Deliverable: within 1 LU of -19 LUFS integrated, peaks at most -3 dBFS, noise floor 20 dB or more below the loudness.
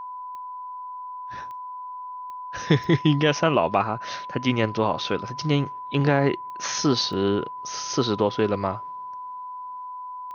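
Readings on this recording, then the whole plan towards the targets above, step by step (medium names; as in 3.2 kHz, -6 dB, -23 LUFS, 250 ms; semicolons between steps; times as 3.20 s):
clicks found 7; steady tone 1 kHz; tone level -33 dBFS; loudness -24.0 LUFS; peak level -6.0 dBFS; loudness target -19.0 LUFS
-> de-click; band-stop 1 kHz, Q 30; trim +5 dB; peak limiter -3 dBFS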